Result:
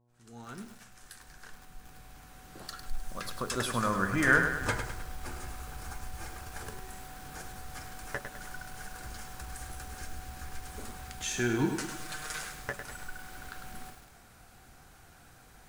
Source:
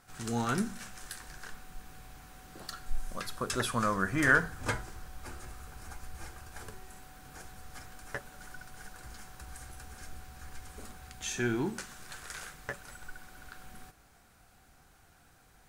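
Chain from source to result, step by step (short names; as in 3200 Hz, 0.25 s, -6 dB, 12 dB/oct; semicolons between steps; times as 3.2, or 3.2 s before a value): opening faded in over 4.53 s; 11.58–12.41 comb 6.5 ms, depth 81%; in parallel at -1 dB: compressor, threshold -46 dBFS, peak gain reduction 24.5 dB; on the sum: buzz 120 Hz, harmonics 9, -71 dBFS -6 dB/oct; lo-fi delay 0.103 s, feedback 55%, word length 8-bit, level -7 dB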